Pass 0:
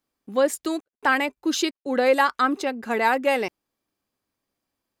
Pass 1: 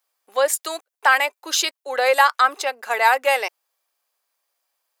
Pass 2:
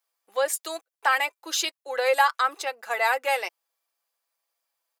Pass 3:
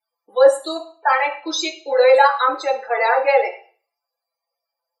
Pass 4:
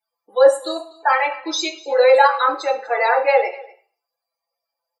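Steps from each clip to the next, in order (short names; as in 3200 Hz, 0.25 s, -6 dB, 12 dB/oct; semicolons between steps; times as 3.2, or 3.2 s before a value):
HPF 580 Hz 24 dB/oct; high shelf 7300 Hz +7 dB; gain +5 dB
comb 6 ms, depth 50%; gain -6.5 dB
loudest bins only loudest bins 32; reverb RT60 0.40 s, pre-delay 3 ms, DRR -2 dB; gain -2 dB
echo 0.245 s -22 dB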